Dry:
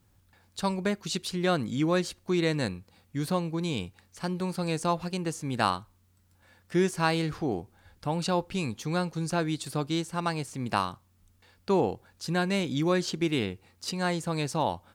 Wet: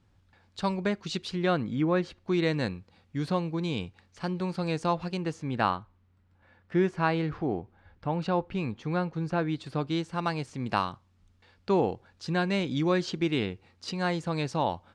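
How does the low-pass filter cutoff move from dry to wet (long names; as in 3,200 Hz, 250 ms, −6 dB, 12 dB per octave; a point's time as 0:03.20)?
0:01.30 4,500 Hz
0:01.89 2,000 Hz
0:02.40 4,500 Hz
0:05.18 4,500 Hz
0:05.77 2,400 Hz
0:09.41 2,400 Hz
0:10.22 4,700 Hz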